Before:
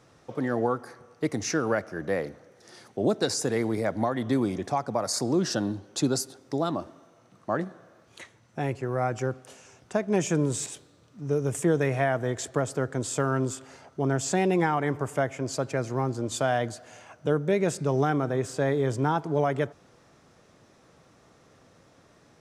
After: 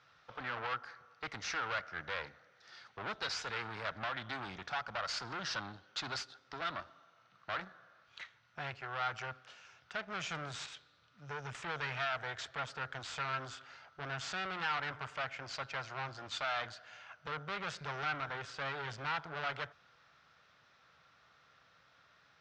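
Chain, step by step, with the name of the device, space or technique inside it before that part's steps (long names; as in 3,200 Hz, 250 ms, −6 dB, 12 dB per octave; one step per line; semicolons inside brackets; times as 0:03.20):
scooped metal amplifier (tube saturation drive 30 dB, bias 0.8; loudspeaker in its box 84–4,300 Hz, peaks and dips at 100 Hz −7 dB, 290 Hz +9 dB, 1,400 Hz +8 dB; guitar amp tone stack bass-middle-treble 10-0-10)
level +6 dB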